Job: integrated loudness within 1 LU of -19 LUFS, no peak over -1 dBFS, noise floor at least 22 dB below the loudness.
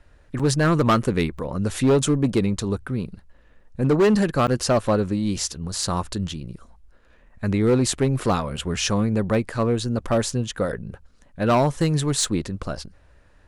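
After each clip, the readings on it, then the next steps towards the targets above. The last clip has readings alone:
clipped samples 1.7%; clipping level -13.0 dBFS; dropouts 3; longest dropout 6.2 ms; loudness -22.5 LUFS; peak level -13.0 dBFS; loudness target -19.0 LUFS
-> clip repair -13 dBFS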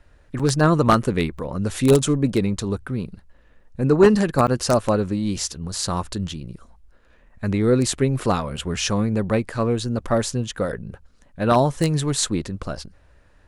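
clipped samples 0.0%; dropouts 3; longest dropout 6.2 ms
-> interpolate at 0.39/1.38/4.47 s, 6.2 ms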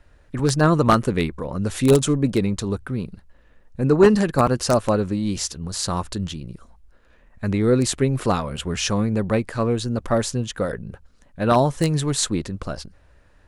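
dropouts 0; loudness -21.5 LUFS; peak level -4.0 dBFS; loudness target -19.0 LUFS
-> trim +2.5 dB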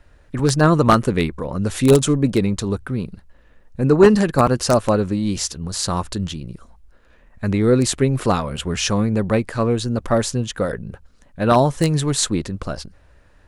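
loudness -19.0 LUFS; peak level -1.5 dBFS; noise floor -52 dBFS

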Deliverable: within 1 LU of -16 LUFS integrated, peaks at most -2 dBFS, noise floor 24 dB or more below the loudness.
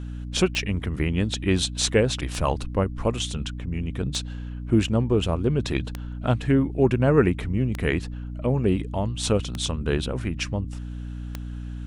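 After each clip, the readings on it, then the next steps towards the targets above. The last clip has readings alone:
clicks found 7; hum 60 Hz; highest harmonic 300 Hz; hum level -30 dBFS; loudness -25.0 LUFS; peak level -5.5 dBFS; loudness target -16.0 LUFS
-> de-click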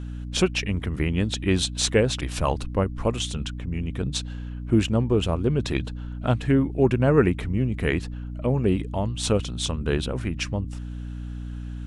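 clicks found 0; hum 60 Hz; highest harmonic 300 Hz; hum level -30 dBFS
-> hum notches 60/120/180/240/300 Hz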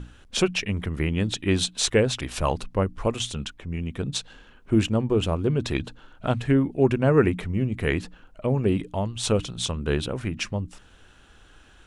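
hum not found; loudness -25.5 LUFS; peak level -6.5 dBFS; loudness target -16.0 LUFS
-> trim +9.5 dB; peak limiter -2 dBFS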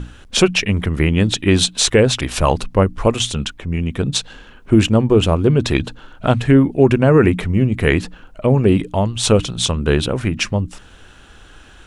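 loudness -16.5 LUFS; peak level -2.0 dBFS; noise floor -44 dBFS

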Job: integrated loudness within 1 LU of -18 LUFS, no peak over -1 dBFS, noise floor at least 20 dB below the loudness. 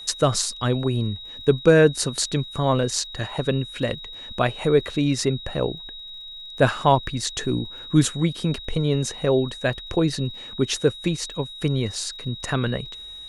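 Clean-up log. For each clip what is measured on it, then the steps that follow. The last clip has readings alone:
tick rate 54 per s; steady tone 3.8 kHz; tone level -36 dBFS; loudness -23.0 LUFS; peak level -3.5 dBFS; loudness target -18.0 LUFS
-> de-click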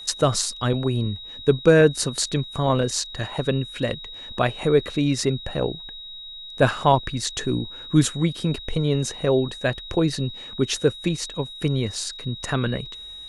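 tick rate 0.075 per s; steady tone 3.8 kHz; tone level -36 dBFS
-> band-stop 3.8 kHz, Q 30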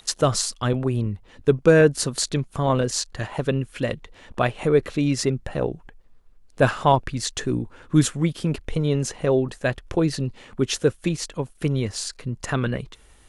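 steady tone not found; loudness -23.5 LUFS; peak level -3.5 dBFS; loudness target -18.0 LUFS
-> trim +5.5 dB; peak limiter -1 dBFS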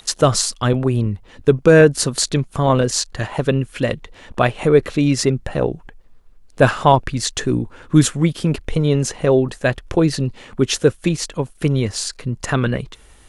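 loudness -18.0 LUFS; peak level -1.0 dBFS; noise floor -47 dBFS

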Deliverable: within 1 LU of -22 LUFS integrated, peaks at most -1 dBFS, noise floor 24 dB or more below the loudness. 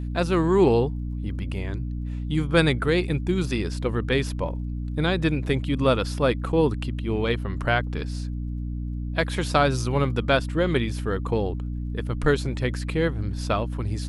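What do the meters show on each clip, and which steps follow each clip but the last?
tick rate 21 per s; hum 60 Hz; highest harmonic 300 Hz; hum level -27 dBFS; loudness -25.0 LUFS; peak level -4.5 dBFS; loudness target -22.0 LUFS
-> de-click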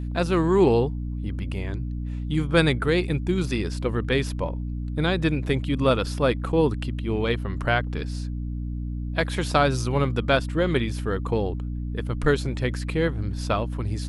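tick rate 0 per s; hum 60 Hz; highest harmonic 300 Hz; hum level -27 dBFS
-> de-hum 60 Hz, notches 5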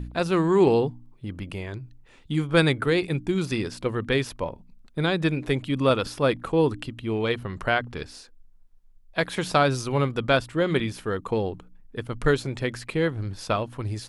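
hum not found; loudness -25.5 LUFS; peak level -5.5 dBFS; loudness target -22.0 LUFS
-> trim +3.5 dB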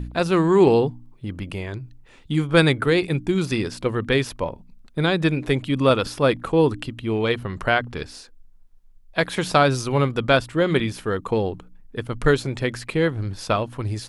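loudness -22.0 LUFS; peak level -2.0 dBFS; noise floor -50 dBFS

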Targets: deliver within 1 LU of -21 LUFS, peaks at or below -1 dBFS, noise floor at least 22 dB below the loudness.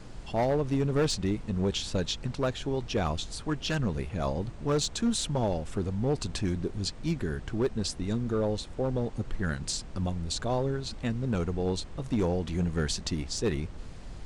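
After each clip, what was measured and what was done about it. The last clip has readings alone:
clipped samples 1.2%; clipping level -21.0 dBFS; noise floor -43 dBFS; noise floor target -53 dBFS; loudness -31.0 LUFS; peak level -21.0 dBFS; loudness target -21.0 LUFS
-> clip repair -21 dBFS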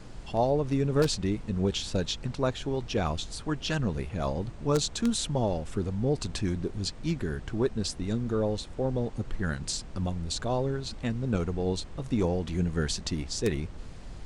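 clipped samples 0.0%; noise floor -43 dBFS; noise floor target -53 dBFS
-> noise print and reduce 10 dB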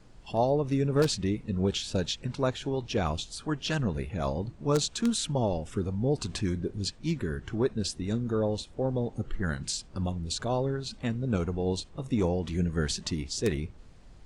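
noise floor -51 dBFS; noise floor target -53 dBFS
-> noise print and reduce 6 dB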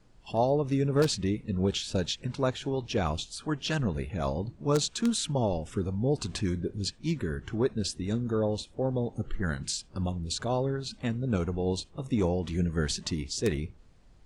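noise floor -56 dBFS; loudness -30.5 LUFS; peak level -12.0 dBFS; loudness target -21.0 LUFS
-> trim +9.5 dB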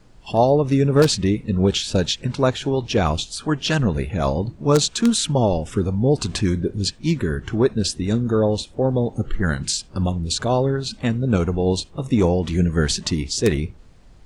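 loudness -21.0 LUFS; peak level -2.5 dBFS; noise floor -46 dBFS

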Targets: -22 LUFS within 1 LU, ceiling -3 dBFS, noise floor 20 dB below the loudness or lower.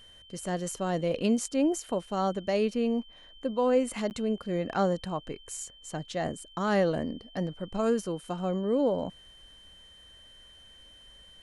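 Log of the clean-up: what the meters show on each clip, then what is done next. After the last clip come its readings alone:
dropouts 1; longest dropout 9.6 ms; steady tone 3.1 kHz; tone level -52 dBFS; loudness -30.0 LUFS; peak level -14.5 dBFS; loudness target -22.0 LUFS
-> interpolate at 4.10 s, 9.6 ms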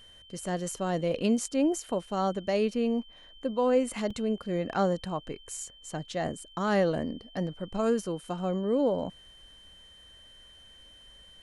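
dropouts 0; steady tone 3.1 kHz; tone level -52 dBFS
-> band-stop 3.1 kHz, Q 30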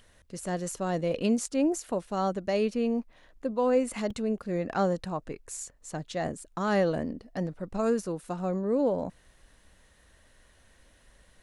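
steady tone not found; loudness -30.0 LUFS; peak level -14.5 dBFS; loudness target -22.0 LUFS
-> trim +8 dB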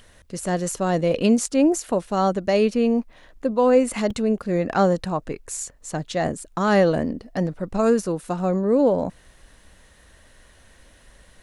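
loudness -22.0 LUFS; peak level -6.5 dBFS; noise floor -54 dBFS

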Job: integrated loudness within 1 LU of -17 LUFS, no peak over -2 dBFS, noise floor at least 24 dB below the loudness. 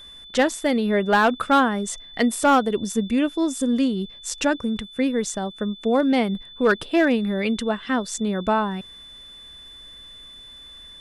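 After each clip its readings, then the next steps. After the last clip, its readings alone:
clipped samples 0.4%; clipping level -11.0 dBFS; steady tone 3.5 kHz; tone level -41 dBFS; loudness -22.0 LUFS; peak level -11.0 dBFS; loudness target -17.0 LUFS
-> clip repair -11 dBFS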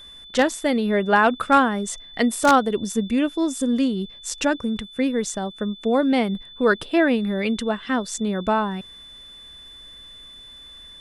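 clipped samples 0.0%; steady tone 3.5 kHz; tone level -41 dBFS
-> band-stop 3.5 kHz, Q 30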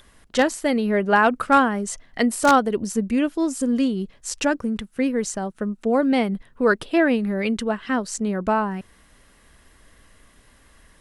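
steady tone not found; loudness -22.0 LUFS; peak level -2.0 dBFS; loudness target -17.0 LUFS
-> trim +5 dB; peak limiter -2 dBFS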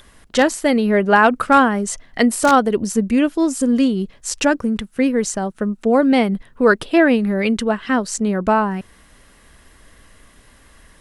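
loudness -17.5 LUFS; peak level -2.0 dBFS; noise floor -50 dBFS

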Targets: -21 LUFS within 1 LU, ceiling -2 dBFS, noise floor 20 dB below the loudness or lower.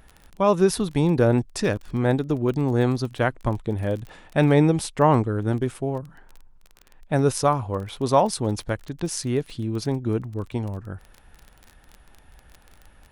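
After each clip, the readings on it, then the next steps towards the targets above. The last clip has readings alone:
tick rate 22 per s; loudness -23.5 LUFS; peak level -5.5 dBFS; loudness target -21.0 LUFS
-> de-click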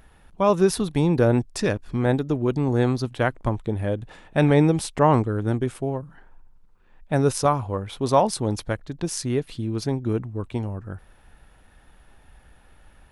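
tick rate 0 per s; loudness -23.5 LUFS; peak level -5.5 dBFS; loudness target -21.0 LUFS
-> trim +2.5 dB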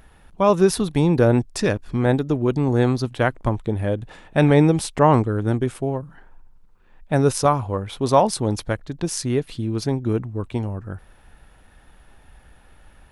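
loudness -21.0 LUFS; peak level -3.0 dBFS; noise floor -52 dBFS

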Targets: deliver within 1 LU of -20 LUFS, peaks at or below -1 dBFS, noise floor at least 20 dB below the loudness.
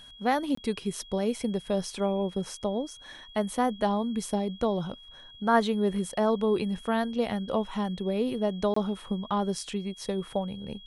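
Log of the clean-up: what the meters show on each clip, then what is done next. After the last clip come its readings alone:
dropouts 2; longest dropout 24 ms; steady tone 3.3 kHz; tone level -48 dBFS; loudness -29.5 LUFS; peak level -9.0 dBFS; loudness target -20.0 LUFS
-> interpolate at 0.55/8.74 s, 24 ms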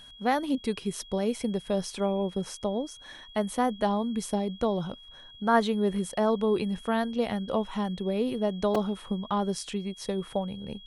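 dropouts 0; steady tone 3.3 kHz; tone level -48 dBFS
-> band-stop 3.3 kHz, Q 30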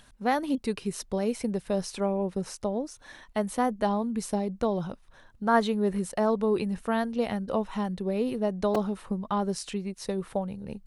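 steady tone not found; loudness -29.5 LUFS; peak level -9.0 dBFS; loudness target -20.0 LUFS
-> trim +9.5 dB; peak limiter -1 dBFS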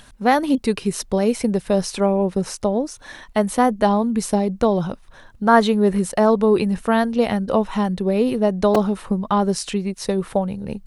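loudness -20.0 LUFS; peak level -1.0 dBFS; noise floor -47 dBFS

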